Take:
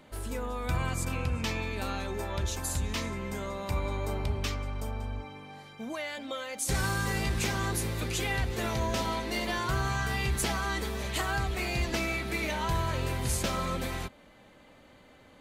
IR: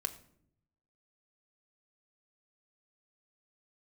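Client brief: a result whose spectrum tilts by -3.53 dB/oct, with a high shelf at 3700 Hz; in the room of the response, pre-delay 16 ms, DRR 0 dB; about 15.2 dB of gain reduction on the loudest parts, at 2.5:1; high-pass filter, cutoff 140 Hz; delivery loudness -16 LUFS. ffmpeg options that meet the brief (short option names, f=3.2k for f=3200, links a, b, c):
-filter_complex "[0:a]highpass=140,highshelf=f=3.7k:g=7.5,acompressor=threshold=-47dB:ratio=2.5,asplit=2[a][b];[1:a]atrim=start_sample=2205,adelay=16[c];[b][c]afir=irnorm=-1:irlink=0,volume=-1dB[d];[a][d]amix=inputs=2:normalize=0,volume=24dB"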